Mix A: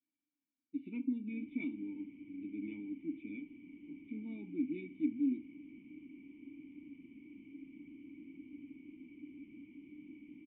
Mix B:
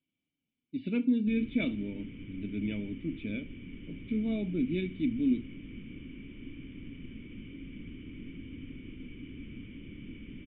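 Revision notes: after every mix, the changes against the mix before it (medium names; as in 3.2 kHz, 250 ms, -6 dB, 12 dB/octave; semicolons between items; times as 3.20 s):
master: remove vowel filter u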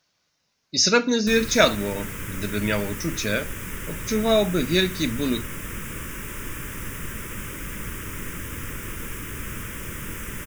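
master: remove cascade formant filter i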